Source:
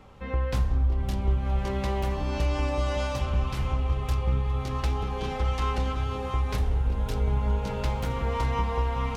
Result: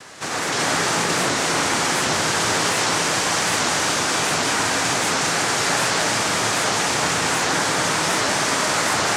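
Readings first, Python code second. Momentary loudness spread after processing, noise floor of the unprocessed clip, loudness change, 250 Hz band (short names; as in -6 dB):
1 LU, -32 dBFS, +9.0 dB, +7.5 dB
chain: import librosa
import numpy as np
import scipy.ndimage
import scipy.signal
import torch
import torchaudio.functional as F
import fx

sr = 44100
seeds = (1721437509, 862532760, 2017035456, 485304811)

p1 = fx.spec_flatten(x, sr, power=0.46)
p2 = scipy.signal.sosfilt(scipy.signal.butter(2, 310.0, 'highpass', fs=sr, output='sos'), p1)
p3 = fx.over_compress(p2, sr, threshold_db=-32.0, ratio=-1.0)
p4 = p2 + (p3 * librosa.db_to_amplitude(-2.0))
p5 = np.clip(10.0 ** (27.5 / 20.0) * p4, -1.0, 1.0) / 10.0 ** (27.5 / 20.0)
p6 = fx.noise_vocoder(p5, sr, seeds[0], bands=3)
p7 = fx.rev_gated(p6, sr, seeds[1], gate_ms=390, shape='rising', drr_db=-3.0)
p8 = fx.record_warp(p7, sr, rpm=78.0, depth_cents=160.0)
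y = p8 * librosa.db_to_amplitude(5.0)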